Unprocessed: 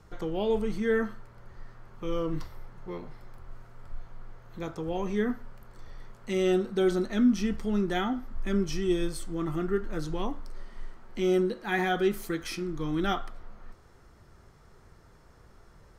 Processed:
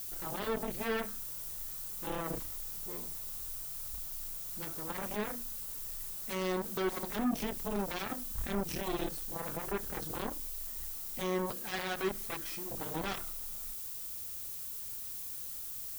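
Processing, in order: notches 60/120/180/240/300/360 Hz; added harmonics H 7 -13 dB, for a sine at -14.5 dBFS; added noise violet -42 dBFS; limiter -24 dBFS, peak gain reduction 9.5 dB

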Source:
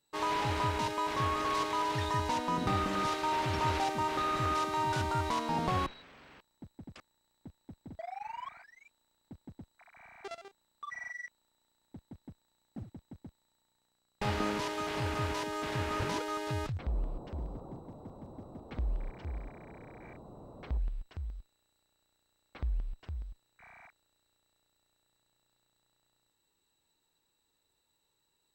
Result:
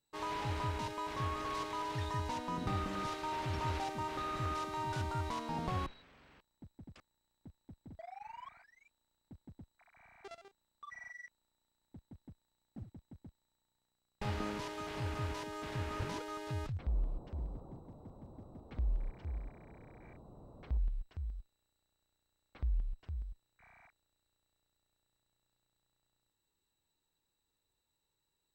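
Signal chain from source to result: low shelf 130 Hz +8 dB; gain -7.5 dB

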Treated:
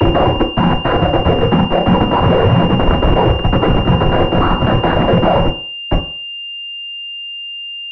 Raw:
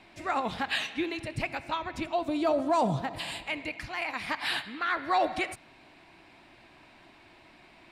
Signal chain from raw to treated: slices in reverse order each 0.137 s, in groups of 4; steep high-pass 210 Hz 48 dB/oct; tilt -2 dB/oct; in parallel at +1 dB: compressor 6:1, threshold -34 dBFS, peak gain reduction 13.5 dB; on the sum: Schmitt trigger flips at -27.5 dBFS; noise vocoder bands 16; frequency shift -140 Hz; on a send at -3 dB: reverb RT60 0.45 s, pre-delay 3 ms; on the sum: maximiser +24 dB; pulse-width modulation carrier 2800 Hz; gain -1 dB

